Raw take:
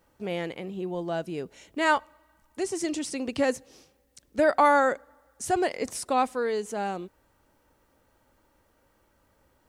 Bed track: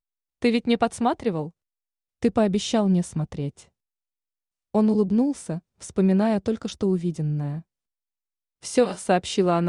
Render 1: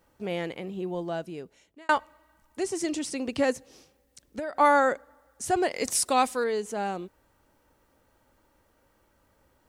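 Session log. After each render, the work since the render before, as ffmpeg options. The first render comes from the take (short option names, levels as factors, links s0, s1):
-filter_complex "[0:a]asplit=3[s0][s1][s2];[s0]afade=t=out:st=3.52:d=0.02[s3];[s1]acompressor=threshold=0.0355:ratio=10:attack=3.2:release=140:knee=1:detection=peak,afade=t=in:st=3.52:d=0.02,afade=t=out:st=4.59:d=0.02[s4];[s2]afade=t=in:st=4.59:d=0.02[s5];[s3][s4][s5]amix=inputs=3:normalize=0,asettb=1/sr,asplit=3[s6][s7][s8];[s6]atrim=end=5.764[s9];[s7]atrim=start=5.76:end=6.44,asetpts=PTS-STARTPTS,afade=t=in:d=0.004:c=qsin,afade=t=out:st=0.676:d=0.004:c=qsin,highshelf=f=2500:g=10.5[s10];[s8]atrim=start=6.436[s11];[s9][s10]acrossfade=d=0.004:c1=hsin:c2=qsin[s12];[s12][s11]acrossfade=d=0.004:c1=qsin:c2=hsin,asplit=2[s13][s14];[s13]atrim=end=1.89,asetpts=PTS-STARTPTS,afade=t=out:st=0.96:d=0.93[s15];[s14]atrim=start=1.89,asetpts=PTS-STARTPTS,afade=t=in:d=0.004:c=hsin[s16];[s15][s16]concat=n=2:v=0:a=1"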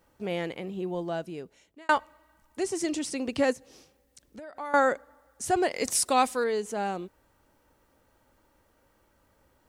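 -filter_complex "[0:a]asettb=1/sr,asplit=3[s0][s1][s2];[s0]atrim=end=3.534[s3];[s1]atrim=start=3.53:end=4.74,asetpts=PTS-STARTPTS,afade=t=in:d=0.004:c=qsin,afade=t=out:st=1.206:d=0.004:c=qsin,acompressor=threshold=0.00447:ratio=2:attack=3.2:release=140:knee=1:detection=peak[s4];[s2]atrim=start=4.736[s5];[s3][s4]acrossfade=d=0.004:c1=hsin:c2=qsin[s6];[s6][s5]acrossfade=d=0.004:c1=qsin:c2=hsin"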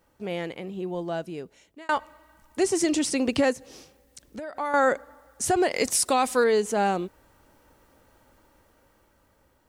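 -af "alimiter=limit=0.106:level=0:latency=1:release=112,dynaudnorm=f=480:g=7:m=2.24"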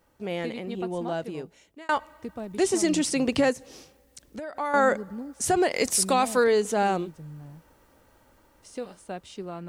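-filter_complex "[1:a]volume=0.158[s0];[0:a][s0]amix=inputs=2:normalize=0"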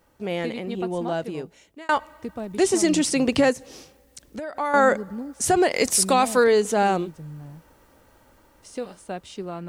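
-af "volume=1.5"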